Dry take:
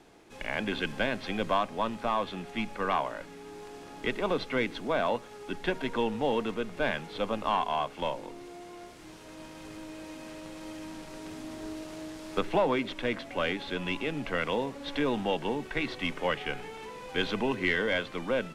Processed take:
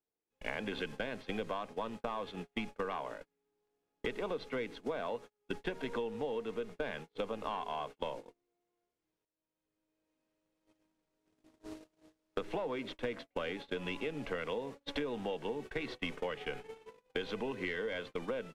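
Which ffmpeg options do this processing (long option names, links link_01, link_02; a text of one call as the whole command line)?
ffmpeg -i in.wav -filter_complex "[0:a]asplit=2[link_01][link_02];[link_01]atrim=end=9.25,asetpts=PTS-STARTPTS,afade=type=out:start_time=9.246:duration=0.004:curve=hsin:silence=0.223872[link_03];[link_02]atrim=start=9.25,asetpts=PTS-STARTPTS,afade=type=in:duration=0.9:silence=0.223872[link_04];[link_03][link_04]concat=n=2:v=0:a=1,equalizer=frequency=460:width=5.4:gain=8,agate=range=-44dB:threshold=-35dB:ratio=16:detection=peak,acompressor=threshold=-38dB:ratio=10,volume=3.5dB" out.wav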